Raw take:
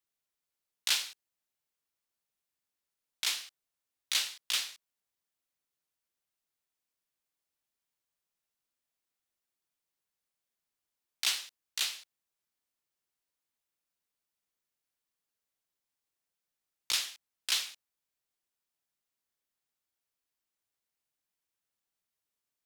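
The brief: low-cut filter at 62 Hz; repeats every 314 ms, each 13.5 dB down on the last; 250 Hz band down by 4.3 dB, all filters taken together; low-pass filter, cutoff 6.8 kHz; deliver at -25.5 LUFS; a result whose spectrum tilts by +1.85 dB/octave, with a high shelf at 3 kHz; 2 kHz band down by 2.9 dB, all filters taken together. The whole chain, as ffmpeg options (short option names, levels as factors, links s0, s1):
-af "highpass=62,lowpass=6800,equalizer=f=250:t=o:g=-6,equalizer=f=2000:t=o:g=-5.5,highshelf=f=3000:g=3.5,aecho=1:1:314|628:0.211|0.0444,volume=2.37"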